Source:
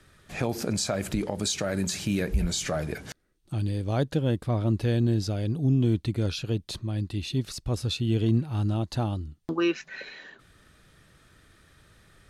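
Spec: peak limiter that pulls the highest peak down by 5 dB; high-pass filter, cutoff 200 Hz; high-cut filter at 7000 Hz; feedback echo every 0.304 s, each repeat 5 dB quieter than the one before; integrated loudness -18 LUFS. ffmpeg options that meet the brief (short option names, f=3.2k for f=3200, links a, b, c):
-af "highpass=200,lowpass=7k,alimiter=limit=-19.5dB:level=0:latency=1,aecho=1:1:304|608|912|1216|1520|1824|2128:0.562|0.315|0.176|0.0988|0.0553|0.031|0.0173,volume=13dB"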